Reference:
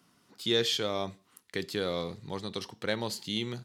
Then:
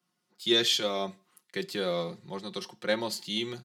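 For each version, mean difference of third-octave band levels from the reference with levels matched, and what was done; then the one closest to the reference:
3.5 dB: high-pass filter 180 Hz 6 dB per octave
comb filter 5.6 ms, depth 77%
multiband upward and downward expander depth 40%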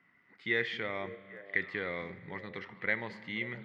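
8.5 dB: low-pass with resonance 2,000 Hz, resonance Q 14
echo through a band-pass that steps 266 ms, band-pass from 170 Hz, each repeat 1.4 octaves, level −8 dB
spring reverb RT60 2.2 s, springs 32 ms, chirp 30 ms, DRR 15.5 dB
level −7.5 dB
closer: first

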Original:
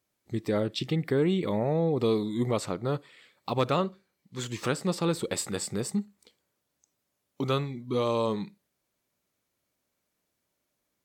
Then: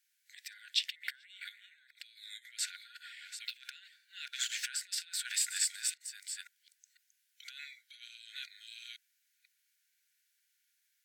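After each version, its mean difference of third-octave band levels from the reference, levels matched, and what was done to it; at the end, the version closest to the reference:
22.0 dB: delay that plays each chunk backwards 498 ms, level −10 dB
compressor whose output falls as the input rises −31 dBFS, ratio −0.5
linear-phase brick-wall high-pass 1,400 Hz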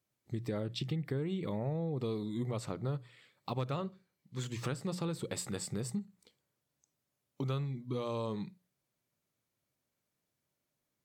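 2.5 dB: parametric band 130 Hz +10 dB 0.75 octaves
mains-hum notches 60/120/180 Hz
downward compressor 4 to 1, threshold −27 dBFS, peak gain reduction 8.5 dB
level −6 dB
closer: second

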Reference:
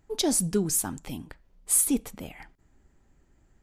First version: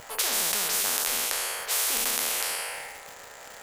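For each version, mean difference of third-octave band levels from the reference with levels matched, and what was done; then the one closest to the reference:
17.0 dB: peak hold with a decay on every bin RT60 1.08 s
elliptic high-pass filter 480 Hz, stop band 40 dB
surface crackle 280 per second −58 dBFS
every bin compressed towards the loudest bin 10 to 1
level +2.5 dB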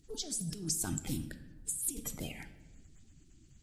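9.5 dB: spectral magnitudes quantised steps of 30 dB
compressor whose output falls as the input rises −34 dBFS, ratio −1
octave-band graphic EQ 500/1,000/2,000/4,000/8,000 Hz −6/−9/−3/+4/+6 dB
rectangular room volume 650 cubic metres, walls mixed, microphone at 0.46 metres
level −4.5 dB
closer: second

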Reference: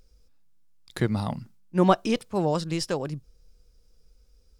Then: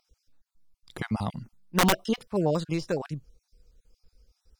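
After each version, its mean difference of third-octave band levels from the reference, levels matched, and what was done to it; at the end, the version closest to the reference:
4.0 dB: time-frequency cells dropped at random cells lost 34%
de-essing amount 90%
high-shelf EQ 8,500 Hz −3.5 dB
wrap-around overflow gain 14 dB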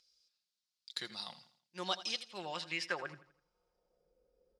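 9.5 dB: comb filter 5.6 ms, depth 46%
dynamic equaliser 2,400 Hz, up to −4 dB, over −49 dBFS, Q 6.1
band-pass filter sweep 4,400 Hz → 520 Hz, 0:02.08–0:04.18
on a send: repeating echo 83 ms, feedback 40%, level −15 dB
on the sum: level +3.5 dB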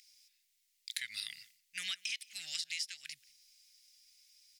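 20.5 dB: elliptic high-pass filter 2,000 Hz, stop band 50 dB
downward compressor 16 to 1, threshold −45 dBFS, peak gain reduction 18.5 dB
on a send: single-tap delay 177 ms −24 dB
on the sum: level +10 dB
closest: first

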